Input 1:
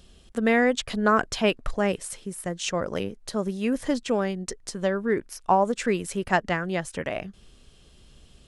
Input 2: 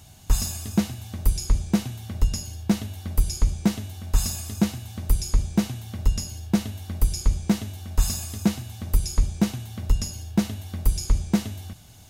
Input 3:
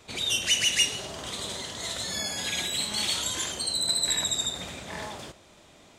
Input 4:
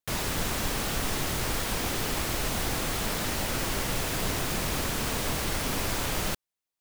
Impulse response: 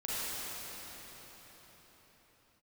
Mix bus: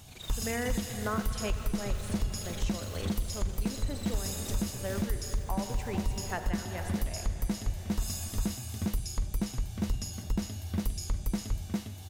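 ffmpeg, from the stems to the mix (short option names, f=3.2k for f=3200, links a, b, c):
-filter_complex "[0:a]asubboost=boost=5:cutoff=68,volume=-11dB,asplit=2[a][b];[b]volume=-10dB[c];[1:a]volume=-2.5dB,asplit=2[d][e];[e]volume=-3dB[f];[2:a]alimiter=limit=-20dB:level=0:latency=1,tremolo=f=24:d=1,volume=-12dB[g];[3:a]alimiter=limit=-24dB:level=0:latency=1,acrossover=split=2000[h][i];[h]aeval=exprs='val(0)*(1-0.7/2+0.7/2*cos(2*PI*2.4*n/s))':c=same[j];[i]aeval=exprs='val(0)*(1-0.7/2-0.7/2*cos(2*PI*2.4*n/s))':c=same[k];[j][k]amix=inputs=2:normalize=0,adelay=150,volume=-12.5dB[l];[4:a]atrim=start_sample=2205[m];[c][m]afir=irnorm=-1:irlink=0[n];[f]aecho=0:1:404:1[o];[a][d][g][l][n][o]amix=inputs=6:normalize=0,alimiter=limit=-21dB:level=0:latency=1:release=356"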